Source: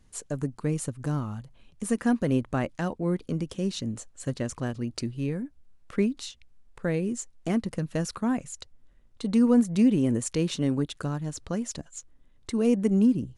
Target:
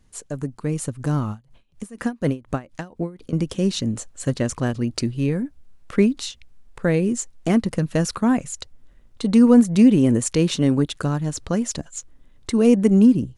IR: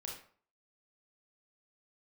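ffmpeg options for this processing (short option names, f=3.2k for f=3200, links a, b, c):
-filter_complex "[0:a]dynaudnorm=f=630:g=3:m=6.5dB,asettb=1/sr,asplit=3[a][b][c];[a]atrim=end=1.304[d];[b]atrim=start=1.3:end=3.33,asetpts=PTS-STARTPTS,afade=t=in:d=0.004:c=qsin,afade=t=out:st=2.026:d=0.004:c=qsin,aeval=exprs='val(0)*pow(10,-24*(0.5-0.5*cos(2*PI*4.1*n/s))/20)':c=same[e];[c]atrim=start=3.326[f];[d][e]acrossfade=d=0.004:c1=hsin:c2=qsin[g];[g][f]acrossfade=d=0.004:c1=qsin:c2=hsin,volume=1.5dB"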